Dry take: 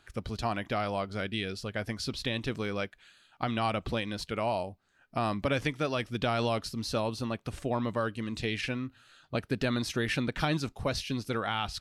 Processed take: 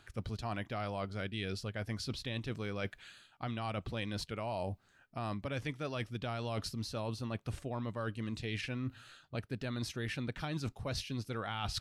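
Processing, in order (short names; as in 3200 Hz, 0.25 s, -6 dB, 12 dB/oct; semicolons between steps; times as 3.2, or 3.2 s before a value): bell 110 Hz +5.5 dB 0.98 oct; reverse; compressor 12:1, threshold -38 dBFS, peak gain reduction 16 dB; reverse; gain +3.5 dB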